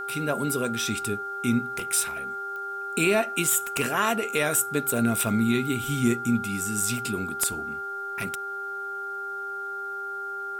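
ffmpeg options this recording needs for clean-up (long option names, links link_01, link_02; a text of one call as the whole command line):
ffmpeg -i in.wav -af "adeclick=threshold=4,bandreject=frequency=395:width_type=h:width=4,bandreject=frequency=790:width_type=h:width=4,bandreject=frequency=1185:width_type=h:width=4,bandreject=frequency=1580:width_type=h:width=4,bandreject=frequency=1400:width=30,agate=range=-21dB:threshold=-26dB" out.wav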